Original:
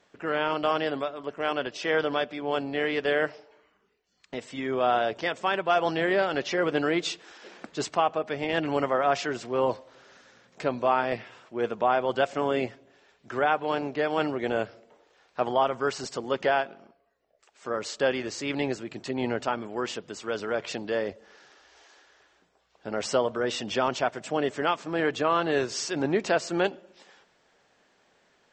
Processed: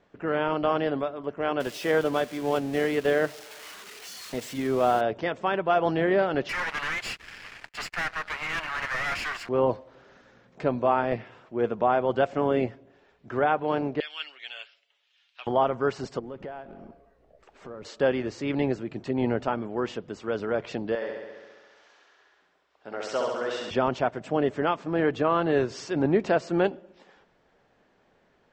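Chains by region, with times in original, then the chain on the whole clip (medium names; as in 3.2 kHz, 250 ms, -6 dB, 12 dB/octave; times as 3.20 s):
1.60–5.01 s: zero-crossing glitches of -22.5 dBFS + transient shaper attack +2 dB, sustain -2 dB
6.49–9.49 s: comb filter that takes the minimum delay 0.41 ms + ladder high-pass 1.1 kHz, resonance 30% + waveshaping leveller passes 5
14.00–15.47 s: resonant high-pass 3 kHz, resonance Q 2.9 + comb 7.1 ms, depth 43%
16.19–17.85 s: companding laws mixed up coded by mu + tilt EQ -1.5 dB/octave + compression 2.5:1, threshold -45 dBFS
20.95–23.71 s: high-pass 1 kHz 6 dB/octave + flutter echo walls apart 11.6 m, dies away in 1.3 s
whole clip: low-pass 3.9 kHz 6 dB/octave; tilt EQ -2 dB/octave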